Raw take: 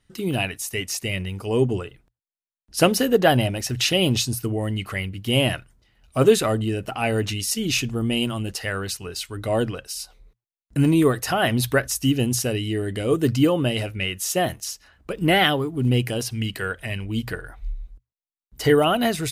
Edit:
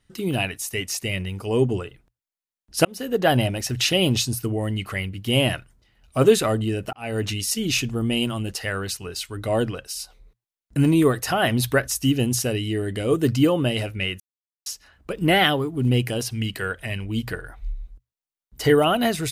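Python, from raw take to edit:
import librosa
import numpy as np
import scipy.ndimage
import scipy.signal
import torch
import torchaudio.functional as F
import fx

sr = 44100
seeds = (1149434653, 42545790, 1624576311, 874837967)

y = fx.edit(x, sr, fx.fade_in_span(start_s=2.85, length_s=0.53),
    fx.fade_in_span(start_s=6.93, length_s=0.33),
    fx.silence(start_s=14.2, length_s=0.46), tone=tone)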